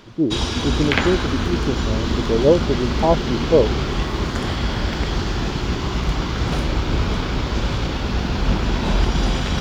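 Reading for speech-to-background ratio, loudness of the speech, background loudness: 1.0 dB, −21.5 LKFS, −22.5 LKFS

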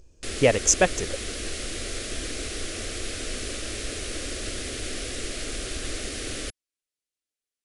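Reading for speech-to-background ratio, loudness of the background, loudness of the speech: 10.5 dB, −32.5 LKFS, −22.0 LKFS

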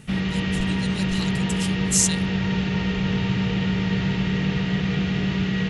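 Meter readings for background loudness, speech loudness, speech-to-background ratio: −23.5 LKFS, −26.0 LKFS, −2.5 dB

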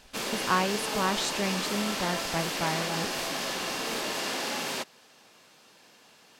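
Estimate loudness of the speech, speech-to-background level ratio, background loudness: −32.0 LKFS, −1.5 dB, −30.5 LKFS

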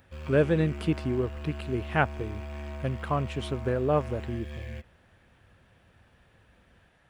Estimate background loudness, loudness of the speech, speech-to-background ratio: −40.0 LKFS, −29.5 LKFS, 10.5 dB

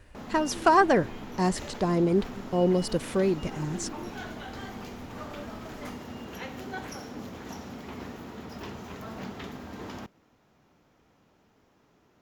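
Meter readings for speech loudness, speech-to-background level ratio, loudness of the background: −26.0 LKFS, 14.0 dB, −40.0 LKFS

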